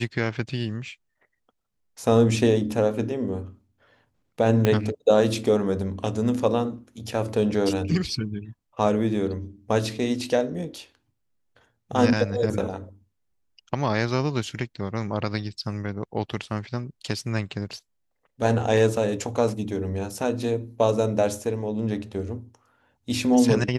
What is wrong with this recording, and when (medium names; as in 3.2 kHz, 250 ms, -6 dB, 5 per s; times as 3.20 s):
4.65 s: pop -7 dBFS